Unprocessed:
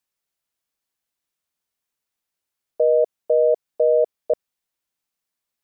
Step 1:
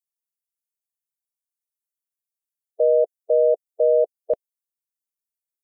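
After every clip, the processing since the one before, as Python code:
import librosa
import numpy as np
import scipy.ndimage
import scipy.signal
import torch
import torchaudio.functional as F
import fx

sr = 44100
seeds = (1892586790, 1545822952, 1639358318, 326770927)

y = fx.bin_expand(x, sr, power=2.0)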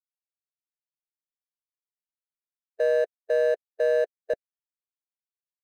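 y = scipy.ndimage.median_filter(x, 41, mode='constant')
y = y * 10.0 ** (-3.5 / 20.0)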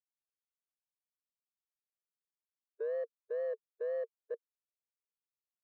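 y = fx.double_bandpass(x, sr, hz=690.0, octaves=1.3)
y = fx.wow_flutter(y, sr, seeds[0], rate_hz=2.1, depth_cents=150.0)
y = y * 10.0 ** (-5.0 / 20.0)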